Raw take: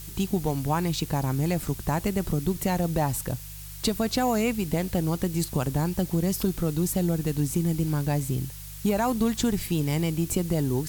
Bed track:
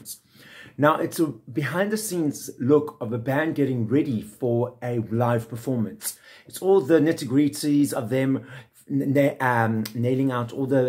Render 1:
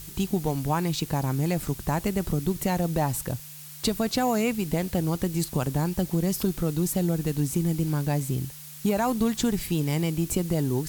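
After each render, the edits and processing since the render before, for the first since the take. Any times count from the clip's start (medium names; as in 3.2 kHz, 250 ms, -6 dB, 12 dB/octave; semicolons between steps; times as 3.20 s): de-hum 50 Hz, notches 2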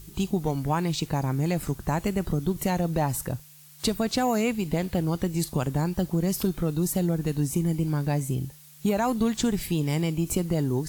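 noise print and reduce 8 dB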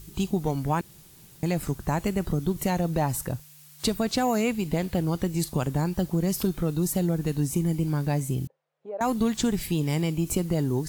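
0.81–1.43 s: room tone; 8.47–9.01 s: ladder band-pass 580 Hz, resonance 60%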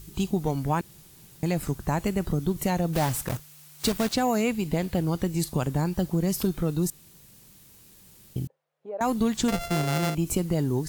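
2.93–4.16 s: block-companded coder 3-bit; 6.90–8.36 s: room tone; 9.48–10.15 s: sorted samples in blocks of 64 samples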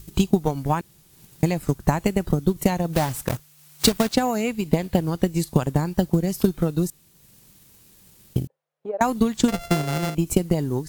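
transient shaper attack +10 dB, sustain -4 dB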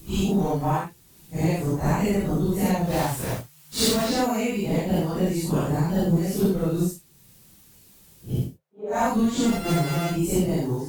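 phase randomisation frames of 200 ms; saturation -11.5 dBFS, distortion -23 dB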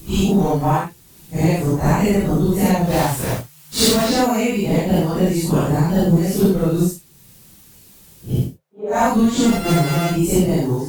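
trim +6.5 dB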